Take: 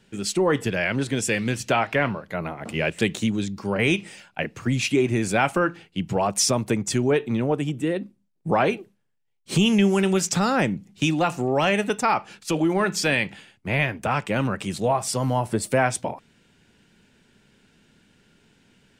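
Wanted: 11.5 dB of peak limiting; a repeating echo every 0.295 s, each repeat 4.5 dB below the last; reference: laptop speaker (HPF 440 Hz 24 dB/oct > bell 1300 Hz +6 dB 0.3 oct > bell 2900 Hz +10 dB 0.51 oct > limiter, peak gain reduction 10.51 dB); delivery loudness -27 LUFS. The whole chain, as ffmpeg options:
-af "alimiter=limit=-21dB:level=0:latency=1,highpass=f=440:w=0.5412,highpass=f=440:w=1.3066,equalizer=f=1.3k:t=o:w=0.3:g=6,equalizer=f=2.9k:t=o:w=0.51:g=10,aecho=1:1:295|590|885|1180|1475|1770|2065|2360|2655:0.596|0.357|0.214|0.129|0.0772|0.0463|0.0278|0.0167|0.01,volume=7dB,alimiter=limit=-18dB:level=0:latency=1"

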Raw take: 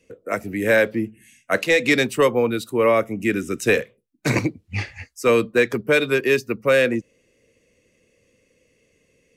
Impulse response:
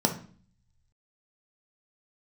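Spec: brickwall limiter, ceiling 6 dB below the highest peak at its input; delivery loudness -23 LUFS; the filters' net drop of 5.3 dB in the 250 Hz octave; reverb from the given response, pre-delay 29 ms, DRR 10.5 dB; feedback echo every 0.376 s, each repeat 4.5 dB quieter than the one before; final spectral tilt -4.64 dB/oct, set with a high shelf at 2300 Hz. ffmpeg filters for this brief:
-filter_complex "[0:a]equalizer=f=250:t=o:g=-7,highshelf=f=2.3k:g=-5.5,alimiter=limit=-14.5dB:level=0:latency=1,aecho=1:1:376|752|1128|1504|1880|2256|2632|3008|3384:0.596|0.357|0.214|0.129|0.0772|0.0463|0.0278|0.0167|0.01,asplit=2[a][b];[1:a]atrim=start_sample=2205,adelay=29[c];[b][c]afir=irnorm=-1:irlink=0,volume=-21.5dB[d];[a][d]amix=inputs=2:normalize=0,volume=1dB"

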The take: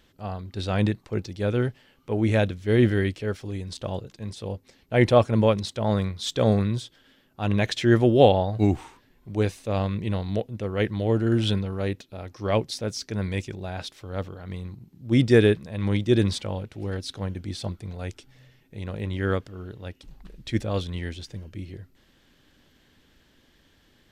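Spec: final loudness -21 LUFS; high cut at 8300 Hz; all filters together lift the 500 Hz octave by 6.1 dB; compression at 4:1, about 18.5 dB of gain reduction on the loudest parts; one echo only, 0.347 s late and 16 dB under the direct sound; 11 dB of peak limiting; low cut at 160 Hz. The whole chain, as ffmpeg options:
-af "highpass=160,lowpass=8.3k,equalizer=f=500:t=o:g=7.5,acompressor=threshold=-29dB:ratio=4,alimiter=level_in=2dB:limit=-24dB:level=0:latency=1,volume=-2dB,aecho=1:1:347:0.158,volume=16.5dB"

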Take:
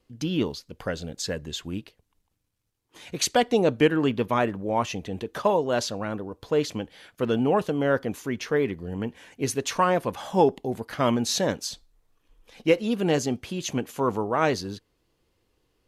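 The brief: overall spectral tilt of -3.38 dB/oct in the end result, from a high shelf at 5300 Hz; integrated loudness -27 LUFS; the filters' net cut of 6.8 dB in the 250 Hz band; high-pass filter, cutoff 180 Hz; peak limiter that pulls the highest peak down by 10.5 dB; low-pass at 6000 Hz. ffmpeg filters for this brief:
-af "highpass=180,lowpass=6k,equalizer=f=250:t=o:g=-7.5,highshelf=f=5.3k:g=4,volume=4.5dB,alimiter=limit=-13.5dB:level=0:latency=1"

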